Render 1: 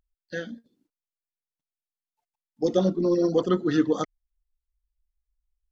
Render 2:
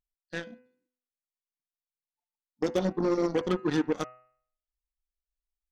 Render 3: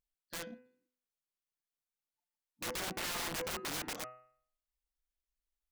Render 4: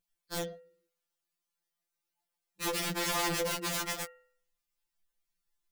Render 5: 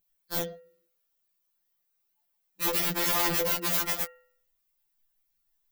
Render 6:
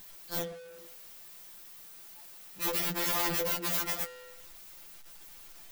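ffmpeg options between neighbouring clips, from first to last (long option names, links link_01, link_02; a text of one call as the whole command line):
ffmpeg -i in.wav -af "acompressor=threshold=-25dB:ratio=2.5,aeval=exprs='0.158*(cos(1*acos(clip(val(0)/0.158,-1,1)))-cos(1*PI/2))+0.0178*(cos(7*acos(clip(val(0)/0.158,-1,1)))-cos(7*PI/2))':channel_layout=same,bandreject=frequency=125.7:width_type=h:width=4,bandreject=frequency=251.4:width_type=h:width=4,bandreject=frequency=377.1:width_type=h:width=4,bandreject=frequency=502.8:width_type=h:width=4,bandreject=frequency=628.5:width_type=h:width=4,bandreject=frequency=754.2:width_type=h:width=4,bandreject=frequency=879.9:width_type=h:width=4,bandreject=frequency=1005.6:width_type=h:width=4,bandreject=frequency=1131.3:width_type=h:width=4,bandreject=frequency=1257:width_type=h:width=4,bandreject=frequency=1382.7:width_type=h:width=4,bandreject=frequency=1508.4:width_type=h:width=4,bandreject=frequency=1634.1:width_type=h:width=4,bandreject=frequency=1759.8:width_type=h:width=4,bandreject=frequency=1885.5:width_type=h:width=4,bandreject=frequency=2011.2:width_type=h:width=4,bandreject=frequency=2136.9:width_type=h:width=4,bandreject=frequency=2262.6:width_type=h:width=4,bandreject=frequency=2388.3:width_type=h:width=4,bandreject=frequency=2514:width_type=h:width=4,bandreject=frequency=2639.7:width_type=h:width=4,bandreject=frequency=2765.4:width_type=h:width=4,bandreject=frequency=2891.1:width_type=h:width=4" out.wav
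ffmpeg -i in.wav -af "aeval=exprs='(mod(35.5*val(0)+1,2)-1)/35.5':channel_layout=same,volume=-1.5dB" out.wav
ffmpeg -i in.wav -af "afftfilt=real='re*2.83*eq(mod(b,8),0)':imag='im*2.83*eq(mod(b,8),0)':win_size=2048:overlap=0.75,volume=8dB" out.wav
ffmpeg -i in.wav -af "aexciter=amount=3.8:drive=2.6:freq=12000,volume=2.5dB" out.wav
ffmpeg -i in.wav -af "aeval=exprs='val(0)+0.5*0.0106*sgn(val(0))':channel_layout=same,volume=-4.5dB" out.wav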